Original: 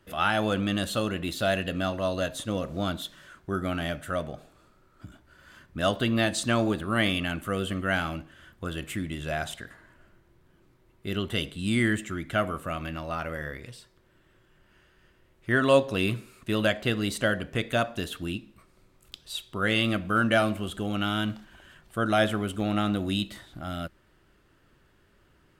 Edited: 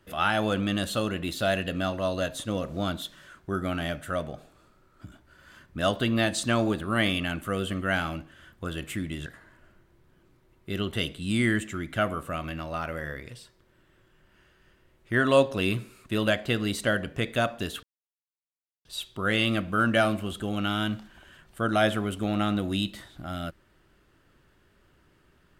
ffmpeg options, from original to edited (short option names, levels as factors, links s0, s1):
-filter_complex "[0:a]asplit=4[s0][s1][s2][s3];[s0]atrim=end=9.262[s4];[s1]atrim=start=9.628:end=18.2,asetpts=PTS-STARTPTS,afade=t=out:st=8.568:d=0.004:c=hsin[s5];[s2]atrim=start=18.2:end=19.22,asetpts=PTS-STARTPTS,volume=0[s6];[s3]atrim=start=19.22,asetpts=PTS-STARTPTS,afade=t=in:d=0.004:c=hsin[s7];[s5][s6][s7]concat=n=3:v=0:a=1[s8];[s4][s8]acrossfade=d=0.004:c1=hsin:c2=hsin"